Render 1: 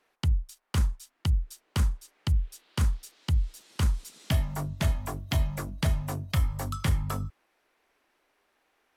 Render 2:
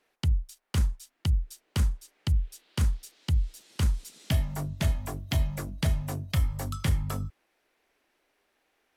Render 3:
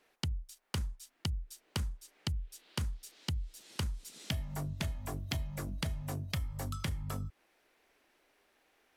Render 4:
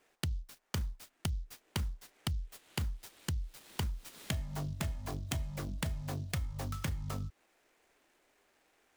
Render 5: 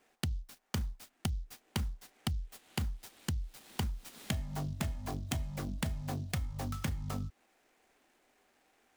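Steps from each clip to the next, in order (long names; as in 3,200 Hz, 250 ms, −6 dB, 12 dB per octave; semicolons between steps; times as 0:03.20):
parametric band 1,100 Hz −4.5 dB 1 octave
downward compressor 6 to 1, threshold −36 dBFS, peak gain reduction 15 dB; level +2 dB
short delay modulated by noise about 4,400 Hz, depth 0.042 ms
hollow resonant body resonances 230/760 Hz, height 6 dB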